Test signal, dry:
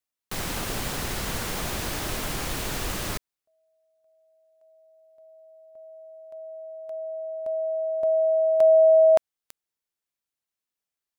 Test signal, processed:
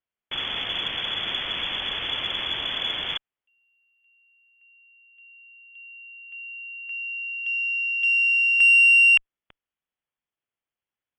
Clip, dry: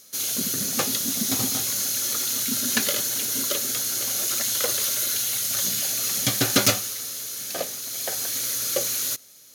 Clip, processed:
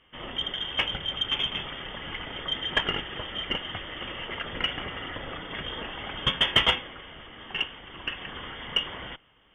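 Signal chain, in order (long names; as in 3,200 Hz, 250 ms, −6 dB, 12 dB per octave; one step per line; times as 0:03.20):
voice inversion scrambler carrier 3,400 Hz
harmonic generator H 5 −30 dB, 6 −37 dB, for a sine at −6.5 dBFS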